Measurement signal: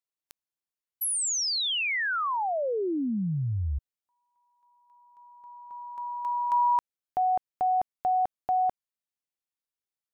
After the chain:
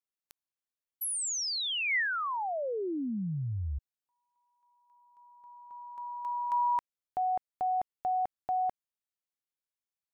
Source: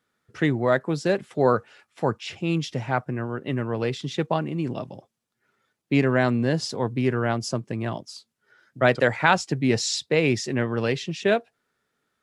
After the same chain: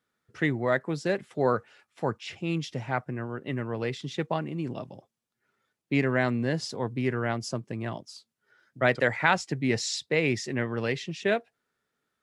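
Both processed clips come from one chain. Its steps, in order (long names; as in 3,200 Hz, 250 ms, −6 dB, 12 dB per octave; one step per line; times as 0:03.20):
dynamic equaliser 2,000 Hz, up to +6 dB, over −44 dBFS, Q 3.4
level −5 dB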